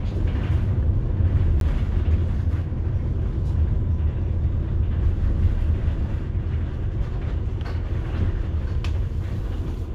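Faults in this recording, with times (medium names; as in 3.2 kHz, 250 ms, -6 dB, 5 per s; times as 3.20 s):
1.60–1.61 s: dropout 12 ms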